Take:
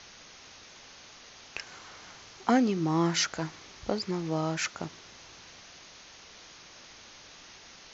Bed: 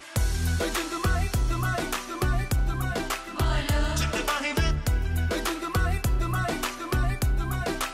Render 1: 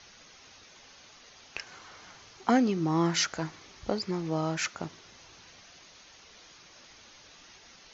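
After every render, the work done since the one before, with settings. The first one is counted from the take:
broadband denoise 6 dB, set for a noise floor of −52 dBFS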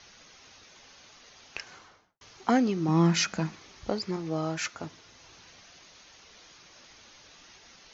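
0:01.68–0:02.21: fade out and dull
0:02.88–0:03.55: hollow resonant body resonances 200/2,500 Hz, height 16 dB, ringing for 85 ms
0:04.16–0:05.24: notch comb filter 190 Hz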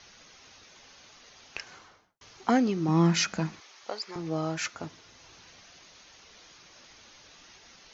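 0:03.60–0:04.16: high-pass filter 670 Hz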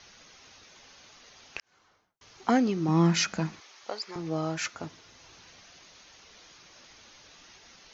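0:01.60–0:02.47: fade in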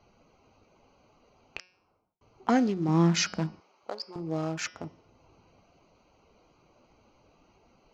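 adaptive Wiener filter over 25 samples
hum removal 182.1 Hz, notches 32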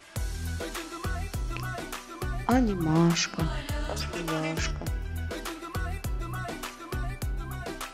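mix in bed −7.5 dB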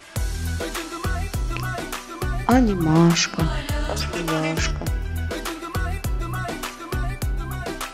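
level +7 dB

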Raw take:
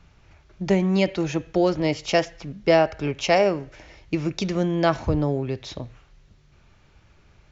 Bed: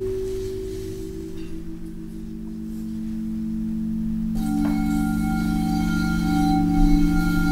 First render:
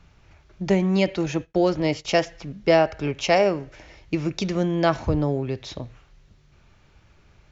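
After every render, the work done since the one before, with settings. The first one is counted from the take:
0:01.26–0:02.05: downward expander −34 dBFS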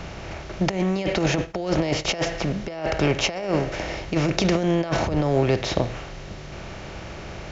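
compressor on every frequency bin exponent 0.6
compressor whose output falls as the input rises −21 dBFS, ratio −0.5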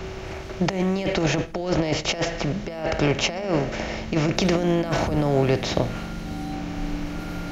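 mix in bed −12.5 dB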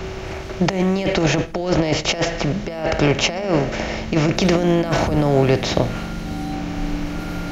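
level +4.5 dB
brickwall limiter −2 dBFS, peak gain reduction 2.5 dB

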